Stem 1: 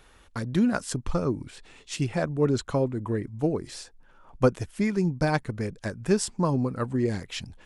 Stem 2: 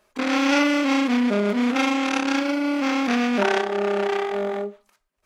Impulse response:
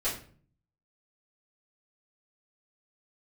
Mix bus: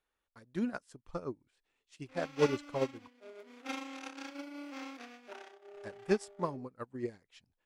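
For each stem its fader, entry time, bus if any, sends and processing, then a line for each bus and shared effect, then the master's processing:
-1.0 dB, 0.00 s, muted 3.08–5.74 s, no send, tone controls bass -8 dB, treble -3 dB
-9.0 dB, 1.90 s, send -18 dB, steep high-pass 260 Hz 48 dB/octave; treble shelf 5.3 kHz +6.5 dB; auto duck -7 dB, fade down 0.90 s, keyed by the first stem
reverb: on, RT60 0.45 s, pre-delay 3 ms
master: upward expansion 2.5:1, over -39 dBFS

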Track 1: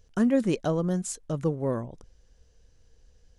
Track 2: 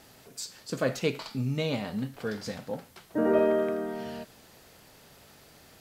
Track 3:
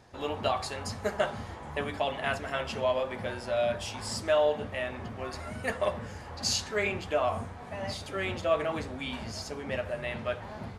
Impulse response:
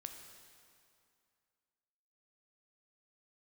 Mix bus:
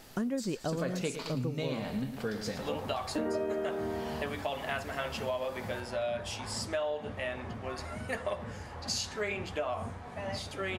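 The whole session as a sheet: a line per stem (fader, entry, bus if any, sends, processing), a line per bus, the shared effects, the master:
-2.0 dB, 0.00 s, no send, no echo send, none
+1.0 dB, 0.00 s, no send, echo send -11.5 dB, none
-1.0 dB, 2.45 s, no send, no echo send, none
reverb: none
echo: feedback delay 110 ms, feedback 47%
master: compression 6:1, threshold -30 dBFS, peak gain reduction 12 dB

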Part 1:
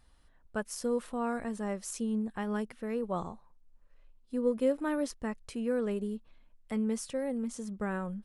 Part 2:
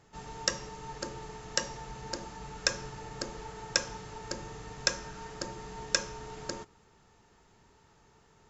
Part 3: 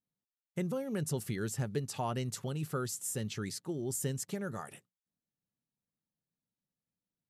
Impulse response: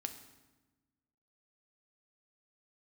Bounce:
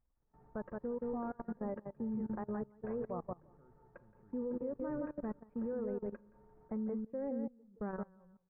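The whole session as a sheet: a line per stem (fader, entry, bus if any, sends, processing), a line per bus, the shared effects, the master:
+1.5 dB, 0.00 s, no send, echo send -5.5 dB, reverb removal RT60 2 s
-2.0 dB, 0.20 s, no send, echo send -15.5 dB, de-hum 90.44 Hz, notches 9; auto duck -7 dB, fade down 1.80 s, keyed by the first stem
-15.0 dB, 0.85 s, send -12 dB, echo send -7 dB, none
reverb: on, RT60 1.2 s, pre-delay 4 ms
echo: feedback delay 172 ms, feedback 20%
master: level held to a coarse grid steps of 18 dB; Gaussian low-pass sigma 6.8 samples; upward expansion 1.5:1, over -50 dBFS

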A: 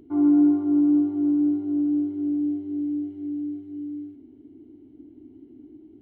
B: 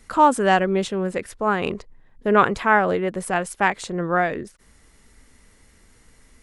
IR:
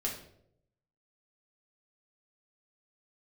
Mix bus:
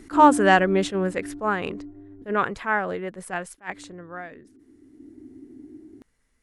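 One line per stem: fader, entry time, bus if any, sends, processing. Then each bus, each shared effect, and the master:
+1.0 dB, 0.00 s, muted 2.22–3.58 s, send -15.5 dB, inverse Chebyshev low-pass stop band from 3.8 kHz, stop band 40 dB; auto duck -20 dB, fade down 0.85 s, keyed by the second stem
1.13 s 0 dB -> 1.91 s -8 dB -> 3.77 s -8 dB -> 4.04 s -17.5 dB, 0.00 s, no send, none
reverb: on, RT60 0.70 s, pre-delay 4 ms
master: peaking EQ 1.7 kHz +3.5 dB 0.64 oct; attacks held to a fixed rise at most 300 dB/s

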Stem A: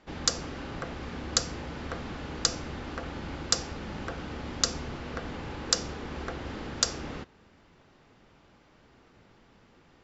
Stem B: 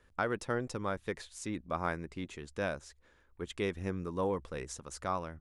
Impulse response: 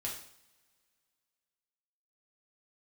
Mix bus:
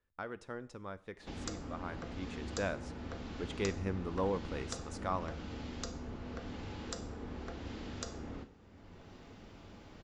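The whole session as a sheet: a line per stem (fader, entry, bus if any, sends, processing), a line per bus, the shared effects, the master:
-14.5 dB, 1.20 s, send -4 dB, tilt shelf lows +5.5 dB, about 1.1 kHz; three bands compressed up and down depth 70%
2.03 s -11 dB -> 2.38 s -2.5 dB, 0.00 s, send -13.5 dB, Bessel low-pass 5.7 kHz, order 2; gate -53 dBFS, range -8 dB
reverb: on, pre-delay 3 ms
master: none

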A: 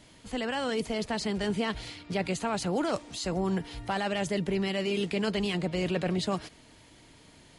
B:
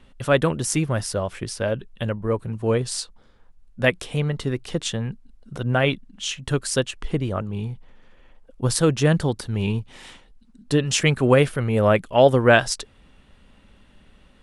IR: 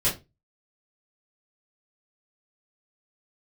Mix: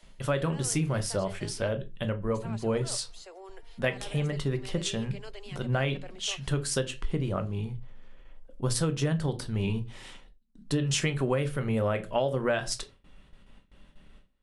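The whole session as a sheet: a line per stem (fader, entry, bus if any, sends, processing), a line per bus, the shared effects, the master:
-3.5 dB, 0.00 s, muted 1.68–2.34 s, no send, steep high-pass 370 Hz 48 dB/octave; auto duck -10 dB, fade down 0.20 s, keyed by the second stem
-5.5 dB, 0.00 s, send -18 dB, gate with hold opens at -42 dBFS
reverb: on, RT60 0.25 s, pre-delay 3 ms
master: compression 12:1, threshold -23 dBFS, peak gain reduction 11.5 dB

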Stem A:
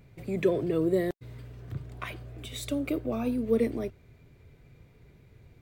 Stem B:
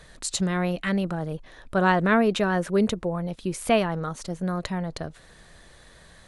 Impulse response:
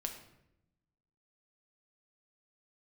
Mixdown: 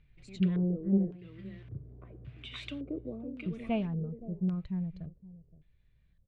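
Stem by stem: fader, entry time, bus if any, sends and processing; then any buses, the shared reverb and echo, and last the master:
1.12 s -13.5 dB -> 1.60 s -4.5 dB -> 3.07 s -4.5 dB -> 3.35 s -13.5 dB, 0.00 s, no send, echo send -7 dB, peaking EQ 570 Hz -11 dB 2 oct
-13.0 dB, 0.00 s, muted 1.10–3.46 s, no send, echo send -18.5 dB, tone controls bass +13 dB, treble +8 dB; spectral contrast expander 1.5:1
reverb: none
echo: delay 520 ms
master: LFO low-pass square 0.89 Hz 480–2900 Hz; loudspeaker Doppler distortion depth 0.21 ms

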